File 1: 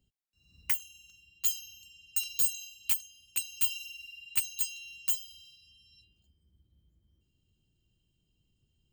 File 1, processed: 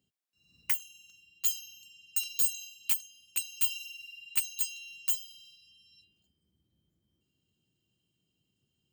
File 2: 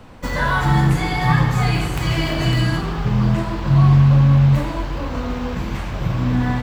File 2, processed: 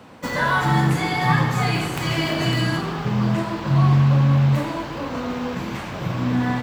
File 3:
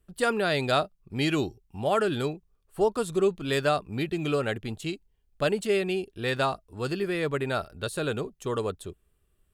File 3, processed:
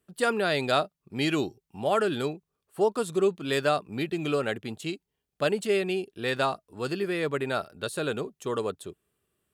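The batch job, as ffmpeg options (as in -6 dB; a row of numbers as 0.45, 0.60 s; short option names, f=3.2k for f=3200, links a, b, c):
-af "highpass=150"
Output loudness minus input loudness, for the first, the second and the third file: 0.0, -3.0, -0.5 LU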